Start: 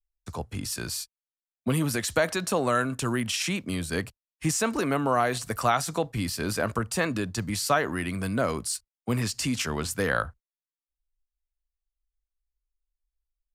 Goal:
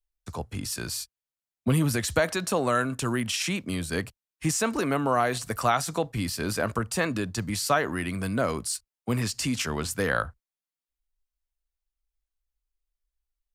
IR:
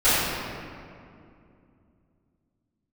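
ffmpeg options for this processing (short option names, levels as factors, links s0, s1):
-filter_complex "[0:a]asettb=1/sr,asplit=3[s0][s1][s2];[s0]atrim=end=0.944[s3];[s1]atrim=start=0.94:end=2.2,asetpts=PTS-STARTPTS,afade=t=in:d=0.004:c=qsin,afade=t=out:st=1.256:d=0.004:c=qsin,equalizer=f=63:t=o:w=2.3:g=8[s4];[s2]atrim=start=2.196[s5];[s3][s4]acrossfade=d=0.004:c1=hsin:c2=qsin[s6];[s6][s5]acrossfade=d=0.004:c1=qsin:c2=hsin"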